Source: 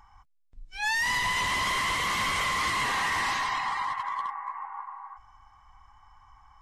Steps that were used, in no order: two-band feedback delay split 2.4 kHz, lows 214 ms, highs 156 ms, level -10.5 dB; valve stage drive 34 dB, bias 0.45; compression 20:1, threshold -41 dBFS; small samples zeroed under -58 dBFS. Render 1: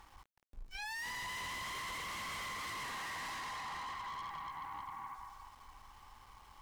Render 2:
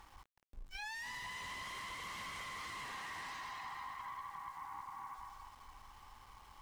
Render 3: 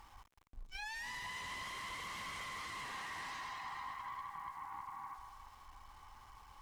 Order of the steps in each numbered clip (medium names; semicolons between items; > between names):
two-band feedback delay > valve stage > compression > small samples zeroed; two-band feedback delay > compression > valve stage > small samples zeroed; compression > two-band feedback delay > small samples zeroed > valve stage